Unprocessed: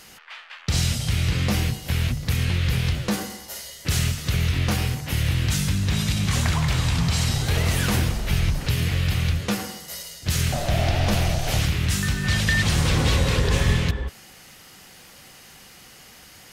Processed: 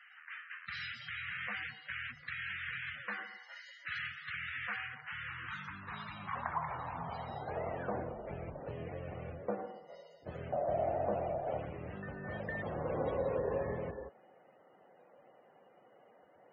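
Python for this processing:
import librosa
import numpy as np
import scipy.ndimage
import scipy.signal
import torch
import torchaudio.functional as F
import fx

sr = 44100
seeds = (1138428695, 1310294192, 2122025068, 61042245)

y = fx.filter_sweep_bandpass(x, sr, from_hz=1700.0, to_hz=570.0, start_s=4.69, end_s=8.18, q=2.4)
y = fx.spec_topn(y, sr, count=64)
y = y * librosa.db_to_amplitude(-2.0)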